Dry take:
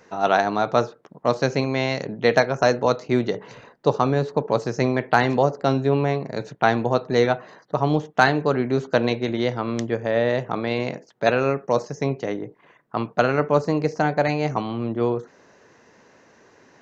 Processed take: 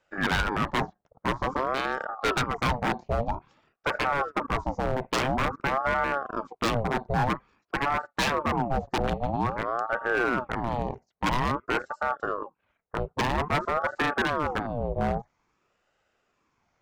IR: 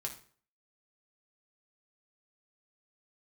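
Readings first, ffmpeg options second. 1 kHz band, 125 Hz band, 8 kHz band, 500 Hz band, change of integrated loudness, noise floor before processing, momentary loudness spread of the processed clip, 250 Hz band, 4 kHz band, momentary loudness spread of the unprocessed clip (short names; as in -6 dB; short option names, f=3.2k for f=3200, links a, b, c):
-3.0 dB, -7.0 dB, n/a, -10.0 dB, -6.0 dB, -56 dBFS, 7 LU, -8.0 dB, -2.0 dB, 8 LU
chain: -af "afwtdn=0.0501,aeval=exprs='0.168*(abs(mod(val(0)/0.168+3,4)-2)-1)':c=same,aeval=exprs='val(0)*sin(2*PI*650*n/s+650*0.6/0.5*sin(2*PI*0.5*n/s))':c=same"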